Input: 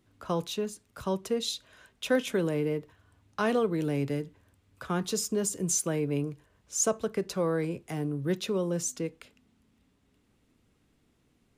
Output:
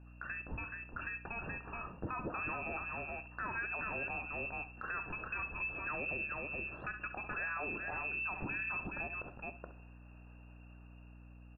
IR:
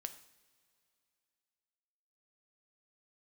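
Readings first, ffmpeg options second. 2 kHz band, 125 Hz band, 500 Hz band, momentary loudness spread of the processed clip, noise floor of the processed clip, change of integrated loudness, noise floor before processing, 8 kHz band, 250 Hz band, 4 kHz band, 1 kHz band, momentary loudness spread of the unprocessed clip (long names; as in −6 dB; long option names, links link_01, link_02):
+4.0 dB, −13.5 dB, −17.5 dB, 20 LU, −55 dBFS, −9.0 dB, −70 dBFS, below −40 dB, −17.5 dB, below −30 dB, −3.5 dB, 10 LU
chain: -filter_complex "[0:a]aemphasis=mode=production:type=75fm,aecho=1:1:424:0.316,lowpass=frequency=2400:width_type=q:width=0.5098,lowpass=frequency=2400:width_type=q:width=0.6013,lowpass=frequency=2400:width_type=q:width=0.9,lowpass=frequency=2400:width_type=q:width=2.563,afreqshift=-2800,asuperstop=centerf=2200:order=4:qfactor=1.7,acompressor=threshold=-47dB:ratio=3,lowshelf=frequency=460:gain=10.5,asplit=2[link_01][link_02];[1:a]atrim=start_sample=2205,adelay=67[link_03];[link_02][link_03]afir=irnorm=-1:irlink=0,volume=-11dB[link_04];[link_01][link_04]amix=inputs=2:normalize=0,dynaudnorm=framelen=350:gausssize=9:maxgain=5dB,aeval=exprs='val(0)+0.00126*(sin(2*PI*60*n/s)+sin(2*PI*2*60*n/s)/2+sin(2*PI*3*60*n/s)/3+sin(2*PI*4*60*n/s)/4+sin(2*PI*5*60*n/s)/5)':channel_layout=same,alimiter=level_in=11dB:limit=-24dB:level=0:latency=1:release=52,volume=-11dB,volume=4.5dB"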